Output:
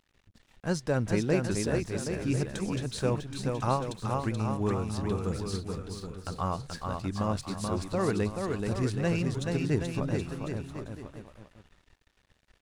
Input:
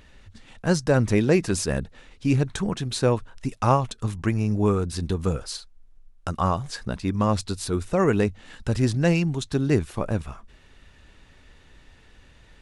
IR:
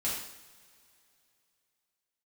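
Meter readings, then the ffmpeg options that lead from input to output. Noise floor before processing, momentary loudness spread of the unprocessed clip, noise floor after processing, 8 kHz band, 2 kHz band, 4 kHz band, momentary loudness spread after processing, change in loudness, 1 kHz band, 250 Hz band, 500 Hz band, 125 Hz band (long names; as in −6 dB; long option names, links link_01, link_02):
−54 dBFS, 10 LU, −70 dBFS, −6.0 dB, −6.0 dB, −6.5 dB, 9 LU, −6.5 dB, −6.0 dB, −6.0 dB, −6.0 dB, −6.0 dB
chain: -af "aecho=1:1:430|774|1049|1269|1445:0.631|0.398|0.251|0.158|0.1,aeval=exprs='sgn(val(0))*max(abs(val(0))-0.00398,0)':channel_layout=same,volume=-8dB"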